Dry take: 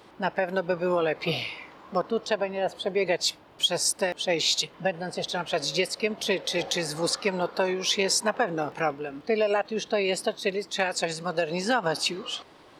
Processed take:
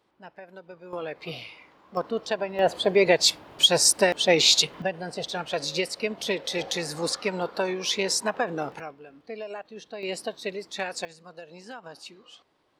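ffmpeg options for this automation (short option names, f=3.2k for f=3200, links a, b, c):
-af "asetnsamples=n=441:p=0,asendcmd='0.93 volume volume -8.5dB;1.97 volume volume -1.5dB;2.59 volume volume 6dB;4.82 volume volume -1.5dB;8.8 volume volume -12.5dB;10.03 volume volume -5dB;11.05 volume volume -17dB',volume=-18dB"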